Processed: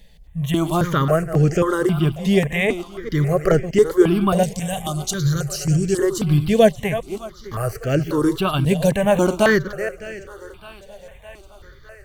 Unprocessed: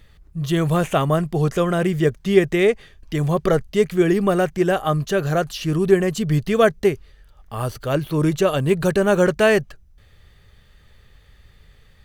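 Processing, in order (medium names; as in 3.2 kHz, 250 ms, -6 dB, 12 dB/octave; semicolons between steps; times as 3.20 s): chunks repeated in reverse 206 ms, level -11 dB; 4.43–5.99 s: graphic EQ 125/250/500/1000/2000/4000/8000 Hz +9/-11/-7/-7/-12/+6/+10 dB; thinning echo 610 ms, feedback 67%, high-pass 280 Hz, level -18 dB; stepped phaser 3.7 Hz 340–3700 Hz; trim +4 dB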